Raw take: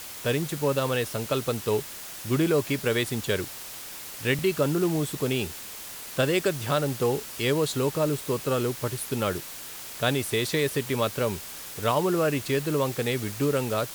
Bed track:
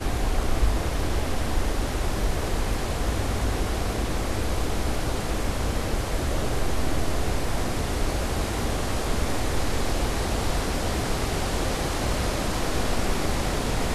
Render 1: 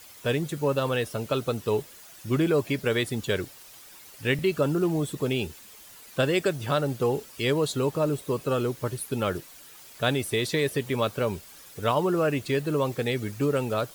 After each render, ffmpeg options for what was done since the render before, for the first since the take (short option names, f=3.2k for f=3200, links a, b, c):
-af "afftdn=nr=11:nf=-40"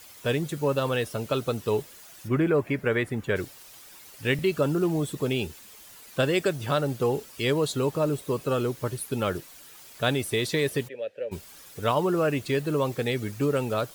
-filter_complex "[0:a]asplit=3[a][b][c];[a]afade=t=out:st=2.27:d=0.02[d];[b]highshelf=f=2.8k:t=q:w=1.5:g=-10.5,afade=t=in:st=2.27:d=0.02,afade=t=out:st=3.35:d=0.02[e];[c]afade=t=in:st=3.35:d=0.02[f];[d][e][f]amix=inputs=3:normalize=0,asplit=3[g][h][i];[g]afade=t=out:st=10.87:d=0.02[j];[h]asplit=3[k][l][m];[k]bandpass=f=530:t=q:w=8,volume=0dB[n];[l]bandpass=f=1.84k:t=q:w=8,volume=-6dB[o];[m]bandpass=f=2.48k:t=q:w=8,volume=-9dB[p];[n][o][p]amix=inputs=3:normalize=0,afade=t=in:st=10.87:d=0.02,afade=t=out:st=11.31:d=0.02[q];[i]afade=t=in:st=11.31:d=0.02[r];[j][q][r]amix=inputs=3:normalize=0"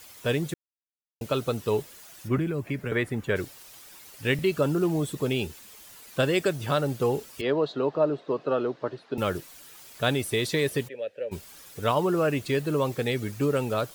-filter_complex "[0:a]asettb=1/sr,asplit=3[a][b][c];[a]atrim=end=2.384[d];[b]atrim=start=2.38:end=2.92,asetpts=PTS-STARTPTS,afade=t=in:d=0.004:c=qsin,afade=t=out:st=0.536:d=0.004:c=qsin,acrossover=split=260|3000[e][f][g];[f]acompressor=threshold=-34dB:ratio=6:attack=3.2:release=140:knee=2.83:detection=peak[h];[e][h][g]amix=inputs=3:normalize=0[i];[c]atrim=start=2.916[j];[d][i]acrossfade=d=0.004:c1=hsin:c2=qsin[k];[k][j]acrossfade=d=0.004:c1=qsin:c2=hsin,asettb=1/sr,asplit=3[l][m][n];[l]atrim=end=7.414[o];[m]atrim=start=7.41:end=9.18,asetpts=PTS-STARTPTS,afade=t=in:d=0.004:c=qsin,afade=t=out:st=1.766:d=0.004:c=qsin,highpass=f=170:w=0.5412,highpass=f=170:w=1.3066,equalizer=f=200:t=q:w=4:g=-8,equalizer=f=670:t=q:w=4:g=6,equalizer=f=2.3k:t=q:w=4:g=-8,equalizer=f=3.2k:t=q:w=4:g=-6,lowpass=f=3.7k:w=0.5412,lowpass=f=3.7k:w=1.3066[p];[n]atrim=start=9.176[q];[o][p]acrossfade=d=0.004:c1=hsin:c2=qsin[r];[r][q]acrossfade=d=0.004:c1=qsin:c2=hsin,asplit=3[s][t][u];[s]atrim=end=0.54,asetpts=PTS-STARTPTS,afade=t=out:st=0.536:d=0.004:c=hsin[v];[t]atrim=start=0.54:end=1.21,asetpts=PTS-STARTPTS,volume=0[w];[u]atrim=start=1.21,asetpts=PTS-STARTPTS,afade=t=in:d=0.004:c=hsin[x];[v][w][x]concat=n=3:v=0:a=1"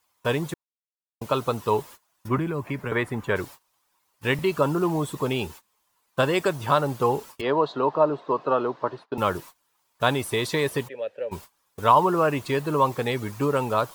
-af "equalizer=f=990:w=2.1:g=13.5,agate=range=-24dB:threshold=-41dB:ratio=16:detection=peak"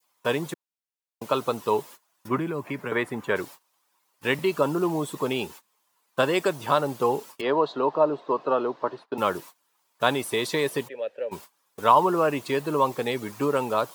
-af "highpass=190,adynamicequalizer=threshold=0.0141:dfrequency=1400:dqfactor=1.1:tfrequency=1400:tqfactor=1.1:attack=5:release=100:ratio=0.375:range=2:mode=cutabove:tftype=bell"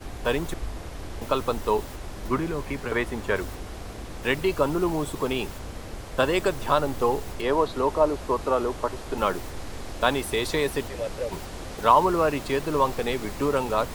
-filter_complex "[1:a]volume=-11dB[a];[0:a][a]amix=inputs=2:normalize=0"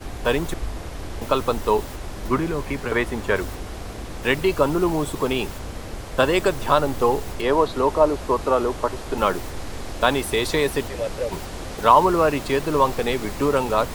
-af "volume=4dB,alimiter=limit=-2dB:level=0:latency=1"